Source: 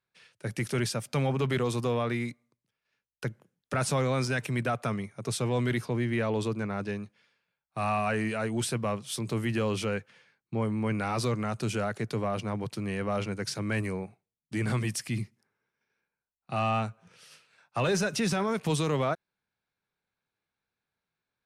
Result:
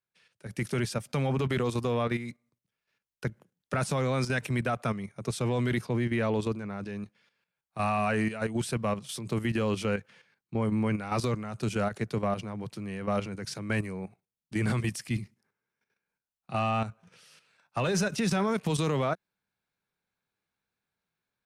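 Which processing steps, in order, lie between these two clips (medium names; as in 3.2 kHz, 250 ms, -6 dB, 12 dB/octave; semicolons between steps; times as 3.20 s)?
level held to a coarse grid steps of 10 dB; peaking EQ 190 Hz +3 dB 0.41 oct; level rider gain up to 7.5 dB; trim -5 dB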